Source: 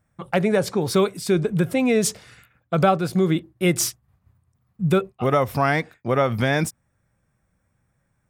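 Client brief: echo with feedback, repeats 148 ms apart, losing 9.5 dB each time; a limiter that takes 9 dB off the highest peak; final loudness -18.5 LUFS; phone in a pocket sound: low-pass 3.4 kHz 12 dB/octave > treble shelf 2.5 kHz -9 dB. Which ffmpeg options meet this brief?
-af "alimiter=limit=0.178:level=0:latency=1,lowpass=3400,highshelf=f=2500:g=-9,aecho=1:1:148|296|444|592:0.335|0.111|0.0365|0.012,volume=2.37"

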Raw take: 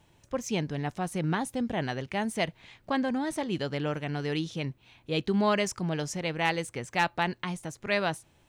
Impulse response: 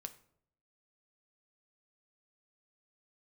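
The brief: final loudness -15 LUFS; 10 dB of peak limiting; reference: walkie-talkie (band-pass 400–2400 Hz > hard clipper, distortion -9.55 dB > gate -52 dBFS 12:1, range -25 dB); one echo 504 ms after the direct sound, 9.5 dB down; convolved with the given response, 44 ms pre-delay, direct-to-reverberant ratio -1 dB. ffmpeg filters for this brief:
-filter_complex "[0:a]alimiter=limit=0.0668:level=0:latency=1,aecho=1:1:504:0.335,asplit=2[s0][s1];[1:a]atrim=start_sample=2205,adelay=44[s2];[s1][s2]afir=irnorm=-1:irlink=0,volume=1.78[s3];[s0][s3]amix=inputs=2:normalize=0,highpass=400,lowpass=2400,asoftclip=type=hard:threshold=0.0224,agate=range=0.0562:threshold=0.00251:ratio=12,volume=14.1"

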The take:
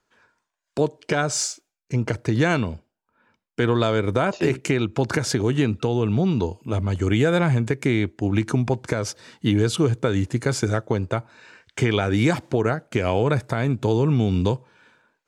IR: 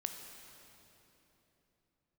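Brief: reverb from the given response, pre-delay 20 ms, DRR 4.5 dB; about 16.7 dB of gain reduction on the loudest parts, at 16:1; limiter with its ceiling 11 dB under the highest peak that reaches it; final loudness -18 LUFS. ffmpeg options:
-filter_complex "[0:a]acompressor=threshold=0.0251:ratio=16,alimiter=level_in=1.5:limit=0.0631:level=0:latency=1,volume=0.668,asplit=2[s0][s1];[1:a]atrim=start_sample=2205,adelay=20[s2];[s1][s2]afir=irnorm=-1:irlink=0,volume=0.631[s3];[s0][s3]amix=inputs=2:normalize=0,volume=10"

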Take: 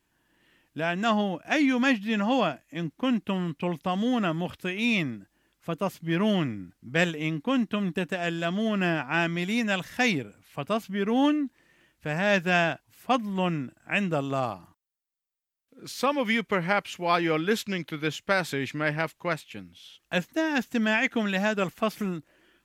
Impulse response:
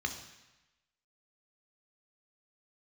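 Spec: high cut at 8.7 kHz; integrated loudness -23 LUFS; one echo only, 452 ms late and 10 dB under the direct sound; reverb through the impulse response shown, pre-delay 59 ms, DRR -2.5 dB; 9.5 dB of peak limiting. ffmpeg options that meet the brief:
-filter_complex "[0:a]lowpass=8700,alimiter=limit=0.119:level=0:latency=1,aecho=1:1:452:0.316,asplit=2[s0][s1];[1:a]atrim=start_sample=2205,adelay=59[s2];[s1][s2]afir=irnorm=-1:irlink=0,volume=0.841[s3];[s0][s3]amix=inputs=2:normalize=0,volume=1.33"

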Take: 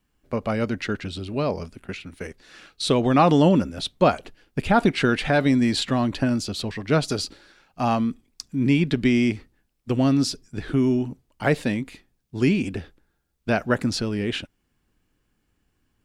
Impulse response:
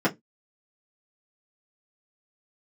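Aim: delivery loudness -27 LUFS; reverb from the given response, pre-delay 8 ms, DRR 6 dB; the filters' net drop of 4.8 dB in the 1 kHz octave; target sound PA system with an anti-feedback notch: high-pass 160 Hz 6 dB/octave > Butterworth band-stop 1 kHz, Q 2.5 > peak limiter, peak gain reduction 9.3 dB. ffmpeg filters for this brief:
-filter_complex "[0:a]equalizer=f=1000:t=o:g=-4,asplit=2[s0][s1];[1:a]atrim=start_sample=2205,adelay=8[s2];[s1][s2]afir=irnorm=-1:irlink=0,volume=0.1[s3];[s0][s3]amix=inputs=2:normalize=0,highpass=f=160:p=1,asuperstop=centerf=1000:order=8:qfactor=2.5,volume=0.841,alimiter=limit=0.168:level=0:latency=1"

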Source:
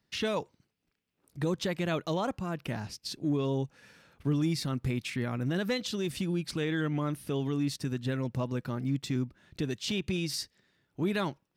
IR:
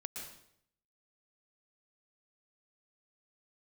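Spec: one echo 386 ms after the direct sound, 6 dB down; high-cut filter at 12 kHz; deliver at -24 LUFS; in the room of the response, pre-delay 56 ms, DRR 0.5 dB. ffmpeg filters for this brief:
-filter_complex "[0:a]lowpass=12000,aecho=1:1:386:0.501,asplit=2[s0][s1];[1:a]atrim=start_sample=2205,adelay=56[s2];[s1][s2]afir=irnorm=-1:irlink=0,volume=1.12[s3];[s0][s3]amix=inputs=2:normalize=0,volume=1.78"

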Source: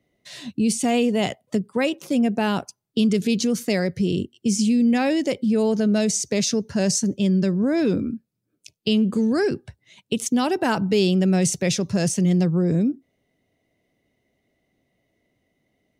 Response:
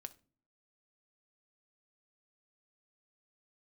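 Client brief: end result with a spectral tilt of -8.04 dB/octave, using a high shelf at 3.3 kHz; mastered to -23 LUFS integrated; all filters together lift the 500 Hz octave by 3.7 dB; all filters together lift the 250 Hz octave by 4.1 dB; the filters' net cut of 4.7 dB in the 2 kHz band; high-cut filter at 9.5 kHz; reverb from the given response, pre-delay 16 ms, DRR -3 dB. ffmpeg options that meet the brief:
-filter_complex "[0:a]lowpass=9500,equalizer=f=250:t=o:g=4.5,equalizer=f=500:t=o:g=3.5,equalizer=f=2000:t=o:g=-4,highshelf=f=3300:g=-7.5,asplit=2[s0][s1];[1:a]atrim=start_sample=2205,adelay=16[s2];[s1][s2]afir=irnorm=-1:irlink=0,volume=2.66[s3];[s0][s3]amix=inputs=2:normalize=0,volume=0.316"

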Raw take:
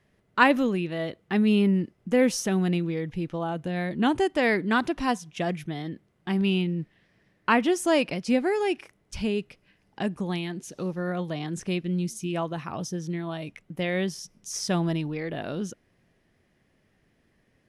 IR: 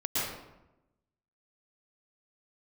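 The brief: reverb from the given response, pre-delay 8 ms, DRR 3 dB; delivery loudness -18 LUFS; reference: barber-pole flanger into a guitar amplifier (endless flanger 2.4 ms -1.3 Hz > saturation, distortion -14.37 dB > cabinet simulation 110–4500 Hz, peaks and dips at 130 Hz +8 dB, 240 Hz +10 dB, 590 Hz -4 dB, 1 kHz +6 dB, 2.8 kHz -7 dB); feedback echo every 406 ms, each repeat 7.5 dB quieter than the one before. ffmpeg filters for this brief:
-filter_complex "[0:a]aecho=1:1:406|812|1218|1624|2030:0.422|0.177|0.0744|0.0312|0.0131,asplit=2[s0][s1];[1:a]atrim=start_sample=2205,adelay=8[s2];[s1][s2]afir=irnorm=-1:irlink=0,volume=0.266[s3];[s0][s3]amix=inputs=2:normalize=0,asplit=2[s4][s5];[s5]adelay=2.4,afreqshift=-1.3[s6];[s4][s6]amix=inputs=2:normalize=1,asoftclip=threshold=0.119,highpass=110,equalizer=f=130:t=q:w=4:g=8,equalizer=f=240:t=q:w=4:g=10,equalizer=f=590:t=q:w=4:g=-4,equalizer=f=1000:t=q:w=4:g=6,equalizer=f=2800:t=q:w=4:g=-7,lowpass=f=4500:w=0.5412,lowpass=f=4500:w=1.3066,volume=2.37"

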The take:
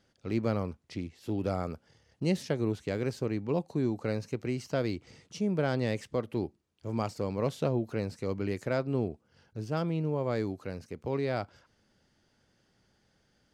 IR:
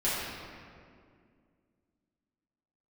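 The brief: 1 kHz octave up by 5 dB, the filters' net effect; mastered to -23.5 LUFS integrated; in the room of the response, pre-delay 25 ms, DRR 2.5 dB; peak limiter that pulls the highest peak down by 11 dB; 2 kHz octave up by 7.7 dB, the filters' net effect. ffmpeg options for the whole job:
-filter_complex "[0:a]equalizer=f=1000:t=o:g=4.5,equalizer=f=2000:t=o:g=8.5,alimiter=limit=0.0668:level=0:latency=1,asplit=2[s0][s1];[1:a]atrim=start_sample=2205,adelay=25[s2];[s1][s2]afir=irnorm=-1:irlink=0,volume=0.224[s3];[s0][s3]amix=inputs=2:normalize=0,volume=3.55"

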